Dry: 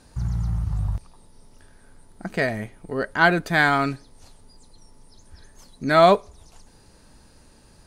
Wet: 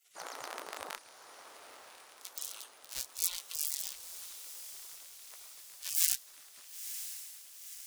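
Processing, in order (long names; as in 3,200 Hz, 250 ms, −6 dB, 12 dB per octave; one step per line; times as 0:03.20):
sub-harmonics by changed cycles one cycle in 3, inverted
gate on every frequency bin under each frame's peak −30 dB weak
feedback delay with all-pass diffusion 971 ms, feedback 58%, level −10 dB
level +3 dB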